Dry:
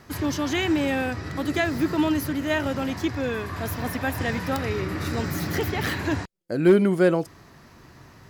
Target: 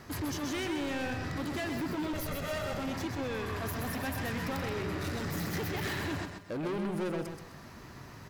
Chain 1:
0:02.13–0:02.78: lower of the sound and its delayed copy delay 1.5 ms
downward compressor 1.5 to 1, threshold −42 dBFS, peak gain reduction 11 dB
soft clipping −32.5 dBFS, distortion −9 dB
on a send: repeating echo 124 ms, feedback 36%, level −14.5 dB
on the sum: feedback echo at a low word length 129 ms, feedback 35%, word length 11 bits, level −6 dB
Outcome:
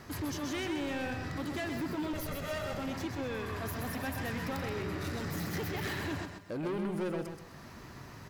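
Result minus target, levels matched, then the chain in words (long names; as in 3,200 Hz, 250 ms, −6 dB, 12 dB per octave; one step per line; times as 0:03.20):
downward compressor: peak gain reduction +3.5 dB
0:02.13–0:02.78: lower of the sound and its delayed copy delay 1.5 ms
downward compressor 1.5 to 1, threshold −31.5 dBFS, peak gain reduction 7.5 dB
soft clipping −32.5 dBFS, distortion −7 dB
on a send: repeating echo 124 ms, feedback 36%, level −14.5 dB
on the sum: feedback echo at a low word length 129 ms, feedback 35%, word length 11 bits, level −6 dB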